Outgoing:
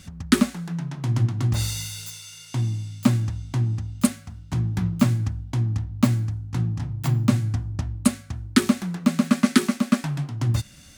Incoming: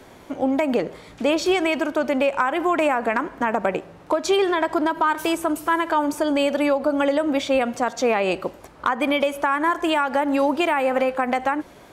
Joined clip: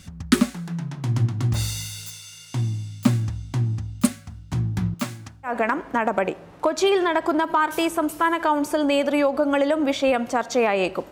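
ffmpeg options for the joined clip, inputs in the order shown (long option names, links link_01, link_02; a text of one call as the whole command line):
ffmpeg -i cue0.wav -i cue1.wav -filter_complex "[0:a]asettb=1/sr,asplit=3[link_01][link_02][link_03];[link_01]atrim=end=4.944[link_04];[link_02]atrim=start=4.94:end=5.53,asetpts=PTS-STARTPTS,afade=type=in:duration=0.004:curve=qsin,afade=type=out:start_time=0.586:duration=0.004:curve=qsin,highpass=frequency=680:poles=1[link_05];[link_03]atrim=start=5.526[link_06];[link_04][link_05]acrossfade=duration=0.004:curve1=hsin:curve2=qsin[link_07];[link_07][link_06]acrossfade=duration=0.004:curve1=qsin:curve2=hsin,apad=whole_dur=11.11,atrim=end=11.11,atrim=end=5.53,asetpts=PTS-STARTPTS[link_08];[1:a]atrim=start=2.9:end=8.58,asetpts=PTS-STARTPTS[link_09];[link_08][link_09]acrossfade=duration=0.1:curve1=tri:curve2=tri" out.wav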